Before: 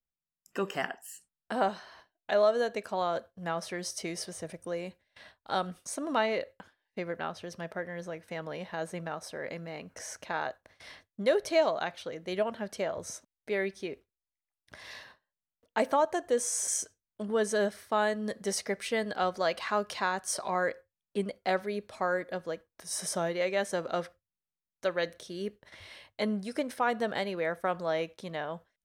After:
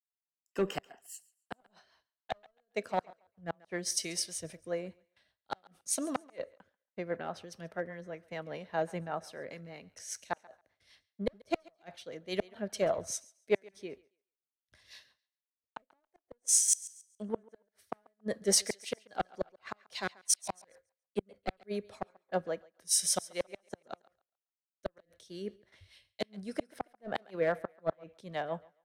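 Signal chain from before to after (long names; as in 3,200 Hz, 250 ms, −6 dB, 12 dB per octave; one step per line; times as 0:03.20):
dynamic equaliser 720 Hz, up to +6 dB, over −42 dBFS, Q 2.7
asymmetric clip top −25 dBFS
rotating-speaker cabinet horn 5 Hz
gate with flip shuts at −22 dBFS, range −41 dB
feedback echo with a high-pass in the loop 139 ms, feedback 41%, high-pass 360 Hz, level −19 dB
multiband upward and downward expander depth 100%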